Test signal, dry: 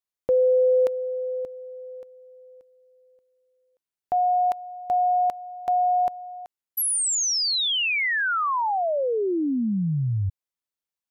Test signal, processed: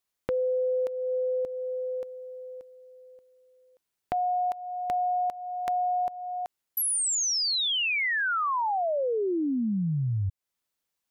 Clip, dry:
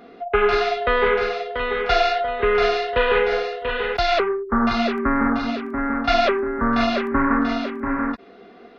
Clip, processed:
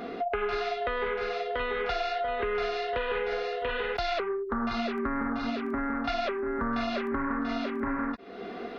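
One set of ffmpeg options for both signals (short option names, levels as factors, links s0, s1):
-af "acompressor=threshold=0.0224:ratio=8:attack=1.9:release=563:knee=6:detection=peak,volume=2.37"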